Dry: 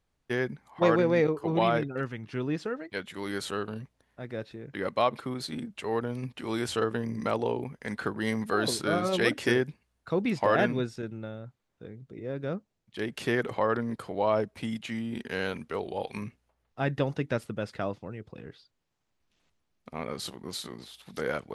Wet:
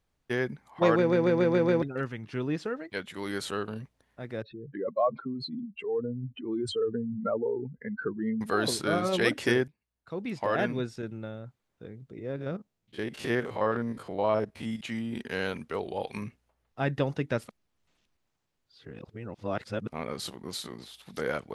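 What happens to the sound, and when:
0.98 s: stutter in place 0.14 s, 6 plays
4.42–8.41 s: spectral contrast enhancement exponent 2.6
9.68–11.10 s: fade in, from -21.5 dB
12.36–14.81 s: spectrogram pixelated in time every 50 ms
17.48–19.89 s: reverse

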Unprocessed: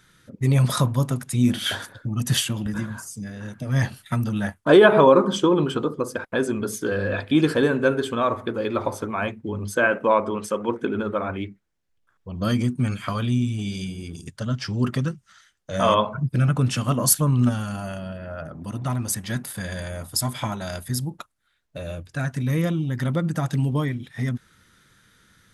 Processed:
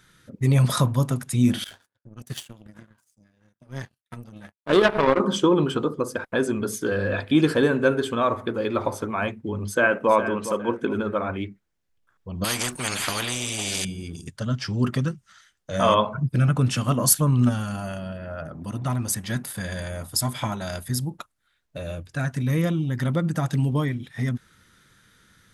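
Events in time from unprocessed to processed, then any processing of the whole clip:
1.64–5.20 s: power-law waveshaper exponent 2
9.66–10.11 s: echo throw 410 ms, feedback 30%, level -11 dB
12.44–13.85 s: spectrum-flattening compressor 4:1

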